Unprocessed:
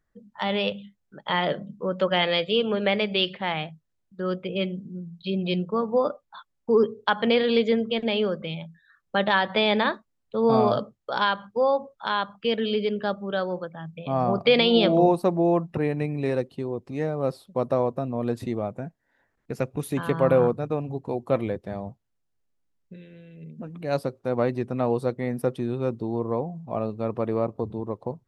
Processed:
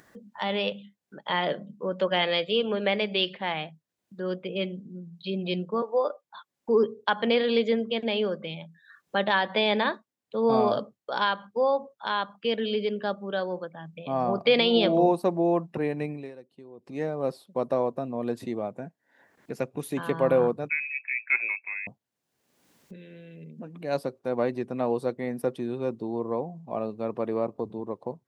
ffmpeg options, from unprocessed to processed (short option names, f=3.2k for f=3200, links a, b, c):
-filter_complex "[0:a]asettb=1/sr,asplit=3[a][b][c];[a]atrim=end=5.824[d];[b]atrim=start=5.82:end=6.25,asetpts=PTS-STARTPTS,afade=t=in:d=0.004:c=qsin,afade=t=out:st=0.426:d=0.004:c=qsin,highpass=f=360:w=0.5412,highpass=f=360:w=1.3066[e];[c]atrim=start=6.246[f];[d][e]acrossfade=d=0.004:c1=hsin:c2=qsin[g];[g][f]acrossfade=d=0.004:c1=qsin:c2=hsin,asettb=1/sr,asplit=3[h][i][j];[h]atrim=end=20.694[k];[i]atrim=start=20.69:end=21.87,asetpts=PTS-STARTPTS,afade=t=in:d=0.004:c=qsin,afade=t=out:st=1.176:d=0.004:c=qsin,lowpass=f=2.3k:t=q:w=0.5098,lowpass=f=2.3k:t=q:w=0.6013,lowpass=f=2.3k:t=q:w=0.9,lowpass=f=2.3k:t=q:w=2.563,afreqshift=-2700[l];[j]atrim=start=21.866[m];[k][l]acrossfade=d=0.004:c1=hsin:c2=qsin[n];[n][m]acrossfade=d=0.004:c1=qsin:c2=hsin,asplit=3[o][p][q];[o]atrim=end=16.38,asetpts=PTS-STARTPTS,afade=t=out:st=16.11:d=0.27:c=qua:silence=0.112202[r];[p]atrim=start=16.38:end=16.7,asetpts=PTS-STARTPTS,volume=-19dB[s];[q]atrim=start=16.7,asetpts=PTS-STARTPTS,afade=t=in:d=0.27:c=qua:silence=0.112202[t];[r][s][t]concat=n=3:v=0:a=1,highpass=180,bandreject=f=1.3k:w=14,acompressor=mode=upward:threshold=-37dB:ratio=2.5,volume=-2dB"